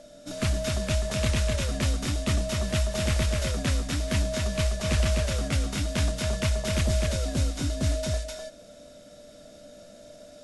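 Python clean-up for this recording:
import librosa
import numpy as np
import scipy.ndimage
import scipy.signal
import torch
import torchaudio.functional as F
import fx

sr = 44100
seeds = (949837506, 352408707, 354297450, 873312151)

y = fx.notch(x, sr, hz=590.0, q=30.0)
y = fx.fix_echo_inverse(y, sr, delay_ms=253, level_db=-3.5)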